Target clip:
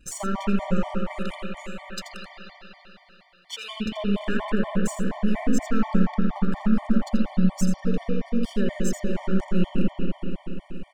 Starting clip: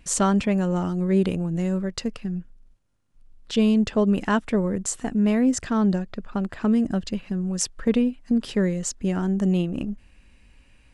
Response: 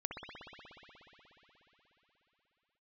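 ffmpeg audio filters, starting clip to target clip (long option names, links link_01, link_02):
-filter_complex "[0:a]aeval=exprs='if(lt(val(0),0),0.447*val(0),val(0))':channel_layout=same,asettb=1/sr,asplit=3[link_01][link_02][link_03];[link_01]atrim=end=0.784[link_04];[link_02]atrim=start=0.78:end=3.8,asetpts=PTS-STARTPTS,afade=type=in:duration=0.004:curve=qsin,afade=type=out:start_time=3.016:duration=0.004:curve=qsin,highpass=frequency=910:width=0.5412,highpass=frequency=910:width=1.3066[link_05];[link_03]atrim=start=3.796[link_06];[link_04][link_05]acrossfade=duration=0.004:curve1=hsin:curve2=qsin[link_07];[link_07][link_06]acrossfade=duration=0.004:curve1=qsin:curve2=hsin,alimiter=limit=-20.5dB:level=0:latency=1:release=458,aecho=1:1:83:0.335[link_08];[1:a]atrim=start_sample=2205[link_09];[link_08][link_09]afir=irnorm=-1:irlink=0,afftfilt=real='re*gt(sin(2*PI*4.2*pts/sr)*(1-2*mod(floor(b*sr/1024/600),2)),0)':imag='im*gt(sin(2*PI*4.2*pts/sr)*(1-2*mod(floor(b*sr/1024/600),2)),0)':win_size=1024:overlap=0.75,volume=6dB"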